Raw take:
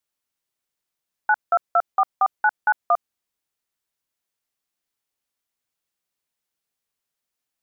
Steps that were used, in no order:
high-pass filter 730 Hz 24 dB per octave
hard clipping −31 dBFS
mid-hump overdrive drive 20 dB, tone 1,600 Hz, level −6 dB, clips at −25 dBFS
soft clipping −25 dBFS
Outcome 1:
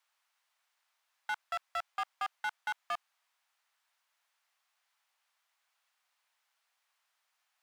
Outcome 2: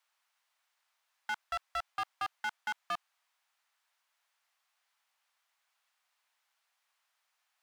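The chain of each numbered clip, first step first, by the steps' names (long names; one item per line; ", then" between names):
hard clipping, then mid-hump overdrive, then high-pass filter, then soft clipping
soft clipping, then mid-hump overdrive, then high-pass filter, then hard clipping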